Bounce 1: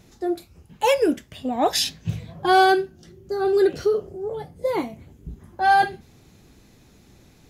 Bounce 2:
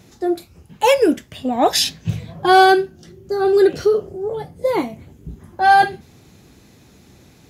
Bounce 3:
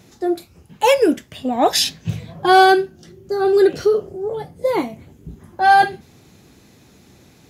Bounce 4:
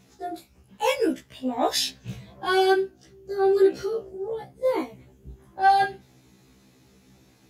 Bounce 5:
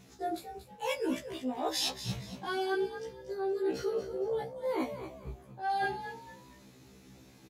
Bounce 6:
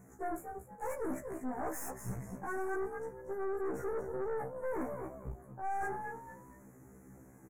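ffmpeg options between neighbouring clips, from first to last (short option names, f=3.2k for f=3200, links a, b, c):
-af "highpass=62,volume=5dB"
-af "lowshelf=f=70:g=-6.5"
-af "afftfilt=real='re*1.73*eq(mod(b,3),0)':imag='im*1.73*eq(mod(b,3),0)':win_size=2048:overlap=0.75,volume=-5.5dB"
-filter_complex "[0:a]areverse,acompressor=threshold=-29dB:ratio=16,areverse,asplit=4[a][b][c][d];[b]adelay=233,afreqshift=66,volume=-10.5dB[e];[c]adelay=466,afreqshift=132,volume=-20.4dB[f];[d]adelay=699,afreqshift=198,volume=-30.3dB[g];[a][e][f][g]amix=inputs=4:normalize=0"
-af "aeval=exprs='(tanh(70.8*val(0)+0.6)-tanh(0.6))/70.8':c=same,asuperstop=centerf=3700:order=8:qfactor=0.72,volume=3dB"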